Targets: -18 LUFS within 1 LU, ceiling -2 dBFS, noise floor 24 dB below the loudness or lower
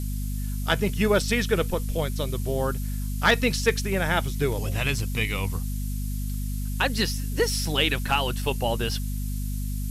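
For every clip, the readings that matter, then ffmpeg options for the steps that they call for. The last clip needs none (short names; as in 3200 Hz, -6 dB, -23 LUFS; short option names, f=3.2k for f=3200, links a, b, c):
hum 50 Hz; harmonics up to 250 Hz; hum level -26 dBFS; noise floor -29 dBFS; noise floor target -50 dBFS; loudness -26.0 LUFS; peak -7.0 dBFS; loudness target -18.0 LUFS
-> -af "bandreject=f=50:t=h:w=4,bandreject=f=100:t=h:w=4,bandreject=f=150:t=h:w=4,bandreject=f=200:t=h:w=4,bandreject=f=250:t=h:w=4"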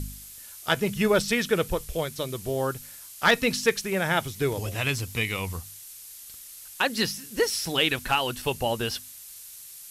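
hum none; noise floor -45 dBFS; noise floor target -50 dBFS
-> -af "afftdn=nr=6:nf=-45"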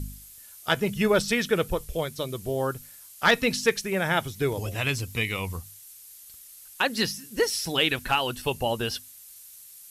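noise floor -48 dBFS; noise floor target -51 dBFS
-> -af "afftdn=nr=6:nf=-48"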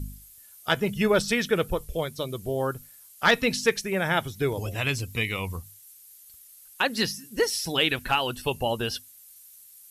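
noise floor -51 dBFS; loudness -26.5 LUFS; peak -8.0 dBFS; loudness target -18.0 LUFS
-> -af "volume=8.5dB,alimiter=limit=-2dB:level=0:latency=1"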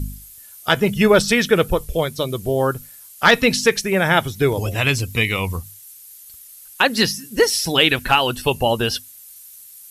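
loudness -18.0 LUFS; peak -2.0 dBFS; noise floor -43 dBFS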